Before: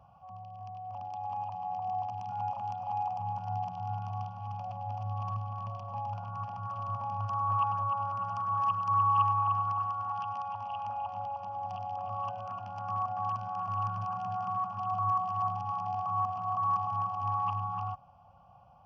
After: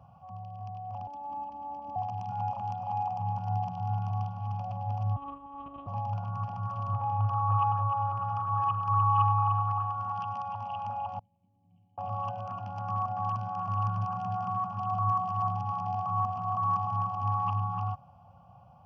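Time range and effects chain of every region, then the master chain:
0:01.07–0:01.96: tilt shelving filter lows +6 dB, about 650 Hz + phases set to zero 287 Hz
0:05.16–0:05.87: frequency shifter +22 Hz + one-pitch LPC vocoder at 8 kHz 280 Hz
0:06.93–0:09.96: low-pass filter 2,800 Hz + comb filter 2.4 ms, depth 67%
0:11.19–0:11.98: formant resonators in series i + high-frequency loss of the air 330 metres + tuned comb filter 170 Hz, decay 0.58 s, mix 80%
whole clip: high-pass filter 97 Hz; low-shelf EQ 270 Hz +11 dB

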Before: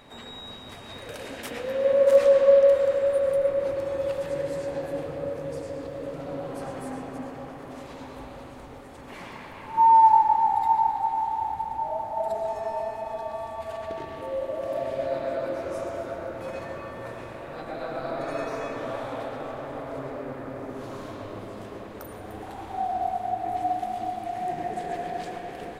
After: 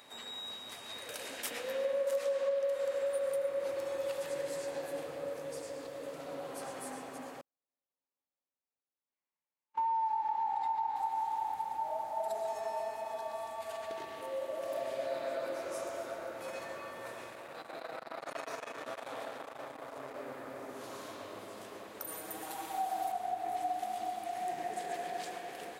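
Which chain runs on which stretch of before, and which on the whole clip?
0:07.41–0:10.96: low-pass filter 4,600 Hz + downward compressor 2 to 1, threshold −22 dBFS + noise gate −32 dBFS, range −53 dB
0:17.29–0:20.16: single-tap delay 380 ms −12.5 dB + saturating transformer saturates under 850 Hz
0:22.07–0:23.12: high-shelf EQ 8,200 Hz +11.5 dB + comb filter 6.3 ms, depth 80%
whole clip: high-pass filter 520 Hz 6 dB per octave; high-shelf EQ 4,500 Hz +10.5 dB; downward compressor 6 to 1, threshold −25 dBFS; level −5 dB

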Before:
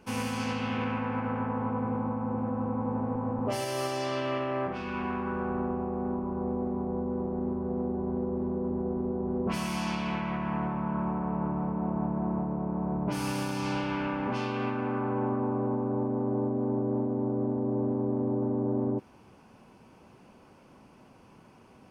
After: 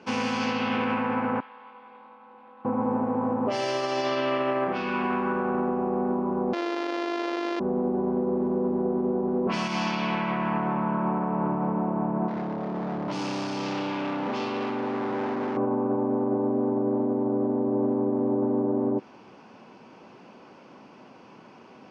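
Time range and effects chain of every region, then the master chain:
0:01.40–0:02.65: resonant band-pass 3,700 Hz, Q 2.8 + double-tracking delay 22 ms −7 dB
0:06.53–0:07.60: samples sorted by size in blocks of 128 samples + linear-phase brick-wall high-pass 260 Hz + high-frequency loss of the air 110 metres
0:12.28–0:15.57: parametric band 1,700 Hz −10 dB 0.8 octaves + mains-hum notches 60/120/180/240/300/360/420/480/540 Hz + hard clipping −33 dBFS
whole clip: high-pass filter 210 Hz 12 dB per octave; brickwall limiter −25 dBFS; low-pass filter 5,700 Hz 24 dB per octave; level +7.5 dB

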